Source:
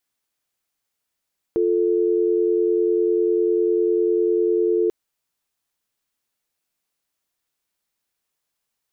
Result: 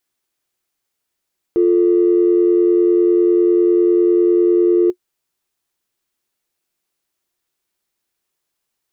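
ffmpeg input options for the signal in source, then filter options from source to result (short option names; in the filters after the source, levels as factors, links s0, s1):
-f lavfi -i "aevalsrc='0.112*(sin(2*PI*350*t)+sin(2*PI*440*t))':d=3.34:s=44100"
-filter_complex "[0:a]asplit=2[s0][s1];[s1]asoftclip=type=tanh:threshold=0.0501,volume=0.335[s2];[s0][s2]amix=inputs=2:normalize=0,equalizer=f=360:t=o:w=0.2:g=8.5"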